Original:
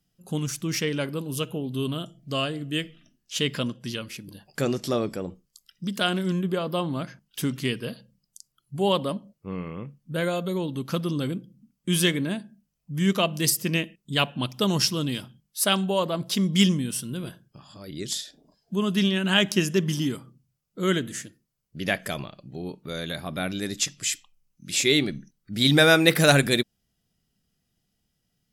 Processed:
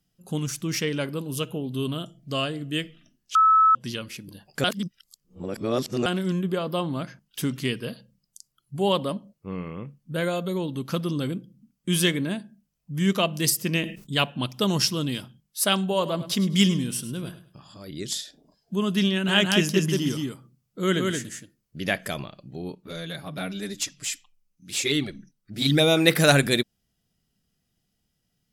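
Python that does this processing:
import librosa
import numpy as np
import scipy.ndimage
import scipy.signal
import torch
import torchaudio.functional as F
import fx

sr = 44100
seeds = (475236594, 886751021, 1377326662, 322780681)

y = fx.sustainer(x, sr, db_per_s=110.0, at=(13.71, 14.21))
y = fx.echo_feedback(y, sr, ms=103, feedback_pct=25, wet_db=-14.0, at=(15.82, 17.88))
y = fx.echo_single(y, sr, ms=173, db=-3.5, at=(19.11, 21.78))
y = fx.env_flanger(y, sr, rest_ms=12.0, full_db=-13.5, at=(22.75, 25.97))
y = fx.edit(y, sr, fx.bleep(start_s=3.35, length_s=0.4, hz=1300.0, db=-13.5),
    fx.reverse_span(start_s=4.64, length_s=1.42), tone=tone)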